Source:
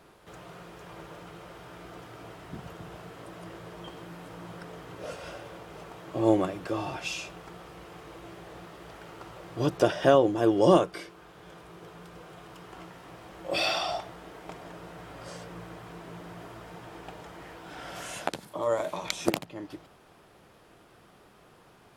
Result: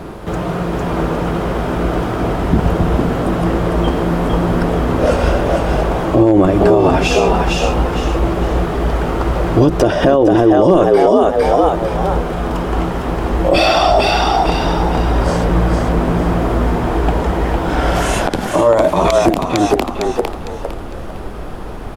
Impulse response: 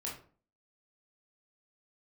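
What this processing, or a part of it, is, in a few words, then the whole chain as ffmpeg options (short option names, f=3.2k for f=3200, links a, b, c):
mastering chain: -filter_complex "[0:a]equalizer=f=130:t=o:w=0.45:g=-6,asplit=5[a][b][c][d][e];[b]adelay=455,afreqshift=72,volume=-5dB[f];[c]adelay=910,afreqshift=144,volume=-15.2dB[g];[d]adelay=1365,afreqshift=216,volume=-25.3dB[h];[e]adelay=1820,afreqshift=288,volume=-35.5dB[i];[a][f][g][h][i]amix=inputs=5:normalize=0,asubboost=boost=6:cutoff=53,equalizer=f=460:t=o:w=1.3:g=-3.5,acompressor=threshold=-36dB:ratio=2,tiltshelf=f=930:g=8.5,asoftclip=type=hard:threshold=-18dB,alimiter=level_in=26dB:limit=-1dB:release=50:level=0:latency=1,volume=-1dB"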